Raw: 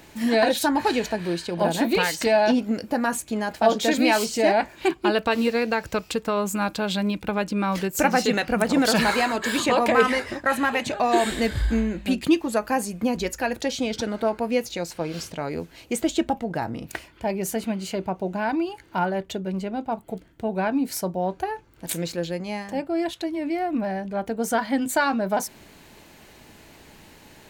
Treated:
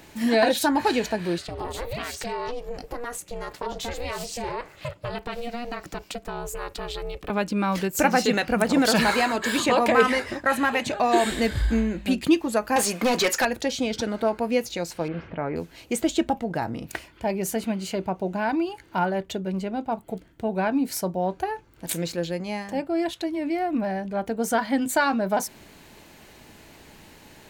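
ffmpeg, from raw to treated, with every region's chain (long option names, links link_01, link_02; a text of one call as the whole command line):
ffmpeg -i in.wav -filter_complex "[0:a]asettb=1/sr,asplit=3[link_01][link_02][link_03];[link_01]atrim=end=1.384[link_04];[link_02]atrim=start=1.38:end=7.3,asetpts=PTS-STARTPTS,afade=type=in:duration=0.004:curve=qsin,afade=type=out:start_time=5.916:duration=0.004:curve=qsin,aeval=exprs='val(0)*sin(2*PI*240*n/s)':channel_layout=same,acompressor=threshold=-29dB:ratio=3:attack=3.2:release=140:knee=1:detection=peak[link_05];[link_03]atrim=start=7.296[link_06];[link_04][link_05]acrossfade=duration=0.004:curve1=hsin:curve2=qsin[link_07];[link_07][link_06]acrossfade=duration=0.004:curve1=qsin:curve2=hsin,asettb=1/sr,asplit=3[link_08][link_09][link_10];[link_08]atrim=end=12.764[link_11];[link_09]atrim=start=12.76:end=13.45,asetpts=PTS-STARTPTS,afade=type=in:duration=0.004:curve=qsin,afade=type=out:start_time=0.686:duration=0.004:curve=qsin,highpass=frequency=300:poles=1,asplit=2[link_12][link_13];[link_13]highpass=frequency=720:poles=1,volume=23dB,asoftclip=type=tanh:threshold=-13dB[link_14];[link_12][link_14]amix=inputs=2:normalize=0,lowpass=frequency=6900:poles=1,volume=-6dB[link_15];[link_10]atrim=start=13.446[link_16];[link_11][link_15]acrossfade=duration=0.004:curve1=hsin:curve2=qsin[link_17];[link_17][link_16]acrossfade=duration=0.004:curve1=qsin:curve2=hsin,asettb=1/sr,asplit=3[link_18][link_19][link_20];[link_18]atrim=end=15.084[link_21];[link_19]atrim=start=15.08:end=15.56,asetpts=PTS-STARTPTS,afade=type=in:duration=0.004:curve=qsin,afade=type=out:start_time=0.476:duration=0.004:curve=qsin,aeval=exprs='val(0)+0.5*0.00944*sgn(val(0))':channel_layout=same,lowpass=frequency=2200:width=0.5412,lowpass=frequency=2200:width=1.3066[link_22];[link_20]atrim=start=15.556[link_23];[link_21][link_22]acrossfade=duration=0.004:curve1=hsin:curve2=qsin[link_24];[link_24][link_23]acrossfade=duration=0.004:curve1=qsin:curve2=hsin" out.wav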